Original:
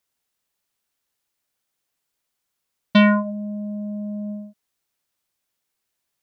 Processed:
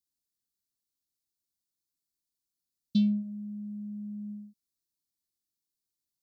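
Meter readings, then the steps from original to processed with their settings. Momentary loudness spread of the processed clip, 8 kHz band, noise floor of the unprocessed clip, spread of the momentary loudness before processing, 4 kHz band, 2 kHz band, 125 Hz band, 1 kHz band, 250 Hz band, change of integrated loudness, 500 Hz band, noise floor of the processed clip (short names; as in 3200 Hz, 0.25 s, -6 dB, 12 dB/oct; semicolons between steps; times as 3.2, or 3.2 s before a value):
14 LU, n/a, -79 dBFS, 15 LU, -16.0 dB, under -35 dB, -9.5 dB, under -40 dB, -9.5 dB, -11.0 dB, under -35 dB, under -85 dBFS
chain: elliptic band-stop 340–4100 Hz, stop band 50 dB; gain -8.5 dB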